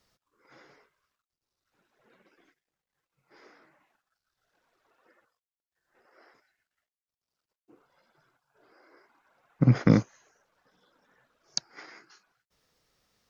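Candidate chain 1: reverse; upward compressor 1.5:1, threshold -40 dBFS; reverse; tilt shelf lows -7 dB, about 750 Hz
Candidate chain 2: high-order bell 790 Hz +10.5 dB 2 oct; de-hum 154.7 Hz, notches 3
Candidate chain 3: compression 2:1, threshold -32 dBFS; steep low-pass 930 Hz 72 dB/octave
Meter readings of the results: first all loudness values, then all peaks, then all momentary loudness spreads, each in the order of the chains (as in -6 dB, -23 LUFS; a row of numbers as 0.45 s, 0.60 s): -30.5 LUFS, -24.5 LUFS, -32.5 LUFS; -3.5 dBFS, -1.0 dBFS, -15.0 dBFS; 22 LU, 22 LU, 4 LU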